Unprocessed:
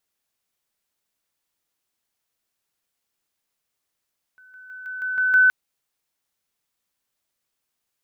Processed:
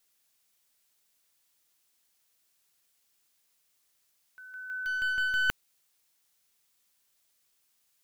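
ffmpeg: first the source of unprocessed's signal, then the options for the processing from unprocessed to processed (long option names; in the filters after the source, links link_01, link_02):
-f lavfi -i "aevalsrc='pow(10,(-47.5+6*floor(t/0.16))/20)*sin(2*PI*1510*t)':duration=1.12:sample_rate=44100"
-af "highshelf=frequency=2200:gain=8.5,areverse,acompressor=threshold=-24dB:ratio=8,areverse,aeval=exprs='clip(val(0),-1,0.0282)':channel_layout=same"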